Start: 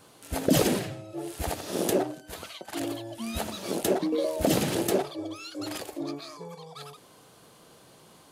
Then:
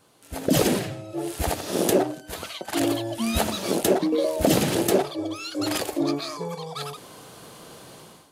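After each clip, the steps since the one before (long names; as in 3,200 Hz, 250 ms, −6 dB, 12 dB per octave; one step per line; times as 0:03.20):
automatic gain control gain up to 15 dB
level −5 dB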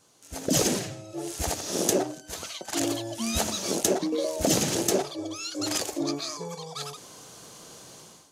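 parametric band 6,300 Hz +12.5 dB 0.8 octaves
level −5 dB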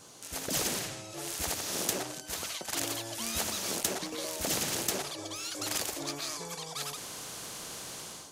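every bin compressed towards the loudest bin 2 to 1
level −5.5 dB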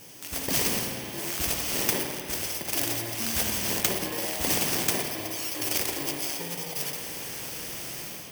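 samples in bit-reversed order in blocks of 32 samples
spring reverb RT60 3.1 s, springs 52 ms, chirp 20 ms, DRR 4 dB
level +5.5 dB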